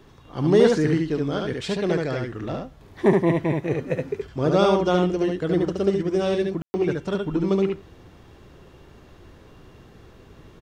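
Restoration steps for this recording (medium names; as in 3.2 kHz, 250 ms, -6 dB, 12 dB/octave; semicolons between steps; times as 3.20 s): room tone fill 6.62–6.74 s; inverse comb 72 ms -3 dB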